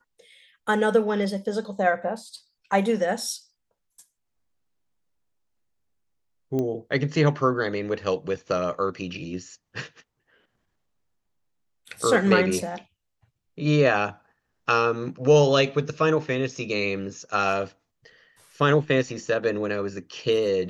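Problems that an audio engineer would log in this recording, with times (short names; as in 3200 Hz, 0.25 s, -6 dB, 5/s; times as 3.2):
6.59 pop -17 dBFS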